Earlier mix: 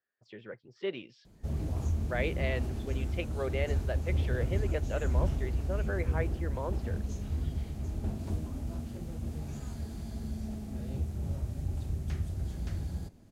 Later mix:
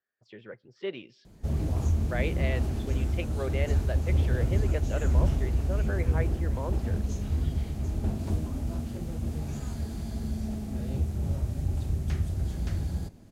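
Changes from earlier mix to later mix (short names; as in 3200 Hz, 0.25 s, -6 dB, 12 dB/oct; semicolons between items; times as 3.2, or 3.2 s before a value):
background +4.5 dB; reverb: on, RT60 1.1 s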